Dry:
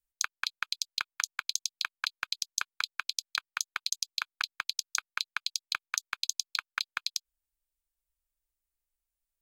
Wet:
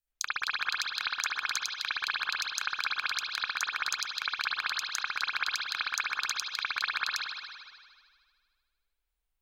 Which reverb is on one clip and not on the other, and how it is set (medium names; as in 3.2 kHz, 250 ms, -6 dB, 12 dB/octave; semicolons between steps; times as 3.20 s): spring tank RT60 1.8 s, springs 57 ms, chirp 20 ms, DRR -8.5 dB; trim -3.5 dB